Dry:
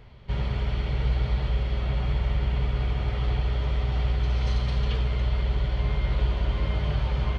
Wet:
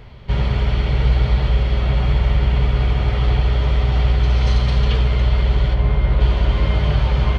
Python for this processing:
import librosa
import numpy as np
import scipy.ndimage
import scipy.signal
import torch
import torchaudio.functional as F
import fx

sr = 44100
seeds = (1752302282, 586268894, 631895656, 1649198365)

y = fx.high_shelf(x, sr, hz=2900.0, db=-10.5, at=(5.73, 6.2), fade=0.02)
y = y * librosa.db_to_amplitude(9.0)